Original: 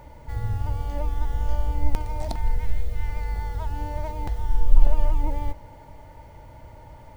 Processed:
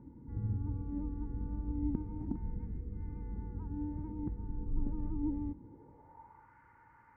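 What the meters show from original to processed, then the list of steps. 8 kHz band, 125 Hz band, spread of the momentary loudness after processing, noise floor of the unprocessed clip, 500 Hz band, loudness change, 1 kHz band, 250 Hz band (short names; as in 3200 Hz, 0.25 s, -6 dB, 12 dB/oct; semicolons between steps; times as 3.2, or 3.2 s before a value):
n/a, -10.0 dB, 18 LU, -46 dBFS, -15.0 dB, -10.5 dB, -19.5 dB, +3.0 dB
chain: tilt shelf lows +7 dB; fixed phaser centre 1500 Hz, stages 4; band-pass sweep 270 Hz -> 1500 Hz, 5.57–6.54; gain +1.5 dB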